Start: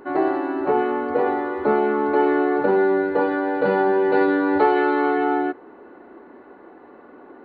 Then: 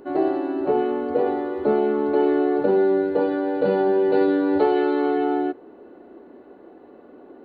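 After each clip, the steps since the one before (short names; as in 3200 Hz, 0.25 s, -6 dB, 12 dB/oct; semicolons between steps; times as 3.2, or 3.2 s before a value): band shelf 1400 Hz -8.5 dB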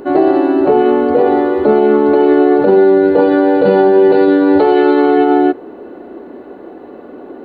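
maximiser +14.5 dB; gain -1 dB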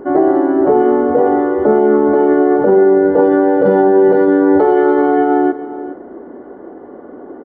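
polynomial smoothing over 41 samples; echo 0.417 s -15 dB; gain -1 dB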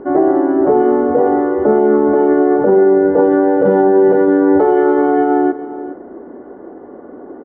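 air absorption 240 m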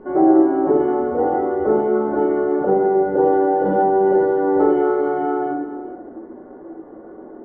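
flange 0.41 Hz, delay 4.5 ms, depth 4.8 ms, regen -64%; shoebox room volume 110 m³, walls mixed, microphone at 1 m; gain -5 dB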